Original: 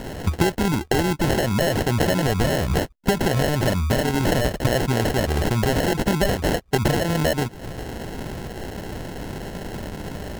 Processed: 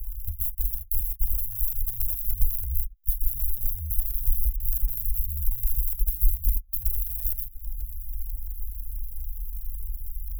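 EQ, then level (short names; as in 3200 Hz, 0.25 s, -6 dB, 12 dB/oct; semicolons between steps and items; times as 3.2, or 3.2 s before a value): inverse Chebyshev band-stop 250–3000 Hz, stop band 80 dB; low shelf 350 Hz +6.5 dB; high shelf 6800 Hz +8 dB; +3.5 dB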